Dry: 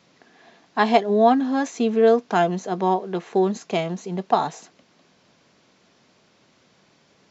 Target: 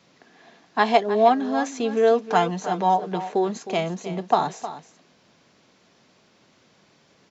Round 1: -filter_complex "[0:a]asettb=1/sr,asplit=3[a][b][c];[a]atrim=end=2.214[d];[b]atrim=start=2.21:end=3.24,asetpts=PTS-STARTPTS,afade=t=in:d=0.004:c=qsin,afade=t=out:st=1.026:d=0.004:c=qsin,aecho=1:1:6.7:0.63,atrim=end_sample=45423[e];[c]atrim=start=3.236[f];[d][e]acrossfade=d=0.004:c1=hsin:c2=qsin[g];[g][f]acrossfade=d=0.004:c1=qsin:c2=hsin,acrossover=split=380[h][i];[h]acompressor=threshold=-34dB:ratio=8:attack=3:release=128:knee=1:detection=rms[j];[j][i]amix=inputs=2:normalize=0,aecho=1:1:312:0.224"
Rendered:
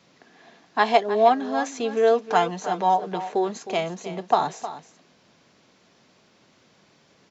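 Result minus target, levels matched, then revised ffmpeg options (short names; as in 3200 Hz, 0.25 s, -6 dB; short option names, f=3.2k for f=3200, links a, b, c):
compressor: peak gain reduction +6 dB
-filter_complex "[0:a]asettb=1/sr,asplit=3[a][b][c];[a]atrim=end=2.214[d];[b]atrim=start=2.21:end=3.24,asetpts=PTS-STARTPTS,afade=t=in:d=0.004:c=qsin,afade=t=out:st=1.026:d=0.004:c=qsin,aecho=1:1:6.7:0.63,atrim=end_sample=45423[e];[c]atrim=start=3.236[f];[d][e]acrossfade=d=0.004:c1=hsin:c2=qsin[g];[g][f]acrossfade=d=0.004:c1=qsin:c2=hsin,acrossover=split=380[h][i];[h]acompressor=threshold=-27dB:ratio=8:attack=3:release=128:knee=1:detection=rms[j];[j][i]amix=inputs=2:normalize=0,aecho=1:1:312:0.224"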